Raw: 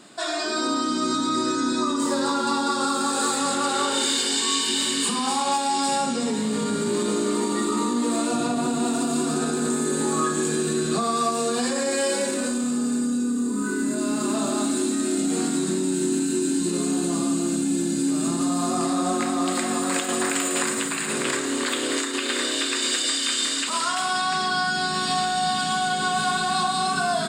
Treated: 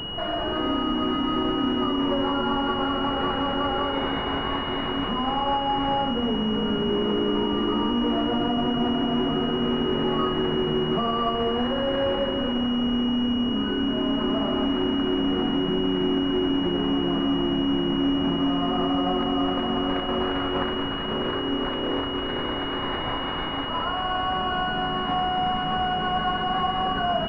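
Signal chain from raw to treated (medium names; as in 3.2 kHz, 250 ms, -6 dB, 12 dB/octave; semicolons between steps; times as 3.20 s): added noise pink -35 dBFS; class-D stage that switches slowly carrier 2.9 kHz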